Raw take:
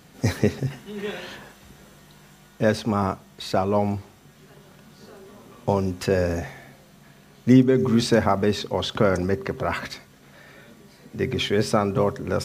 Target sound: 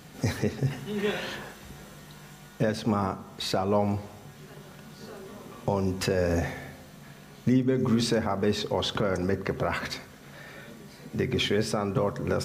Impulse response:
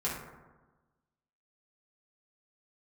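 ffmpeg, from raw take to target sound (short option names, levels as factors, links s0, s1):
-filter_complex "[0:a]alimiter=limit=0.133:level=0:latency=1:release=344,asplit=2[s0][s1];[1:a]atrim=start_sample=2205[s2];[s1][s2]afir=irnorm=-1:irlink=0,volume=0.141[s3];[s0][s3]amix=inputs=2:normalize=0,volume=1.19"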